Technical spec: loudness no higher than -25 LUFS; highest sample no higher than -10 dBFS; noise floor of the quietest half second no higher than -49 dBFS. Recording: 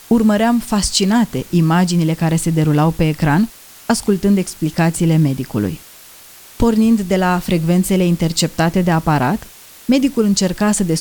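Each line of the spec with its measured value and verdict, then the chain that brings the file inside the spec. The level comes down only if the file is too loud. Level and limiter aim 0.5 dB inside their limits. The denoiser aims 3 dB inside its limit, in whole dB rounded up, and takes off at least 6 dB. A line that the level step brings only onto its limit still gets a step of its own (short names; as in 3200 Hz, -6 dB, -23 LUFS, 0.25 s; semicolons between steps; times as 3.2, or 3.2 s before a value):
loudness -16.0 LUFS: fail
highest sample -2.5 dBFS: fail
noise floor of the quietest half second -41 dBFS: fail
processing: gain -9.5 dB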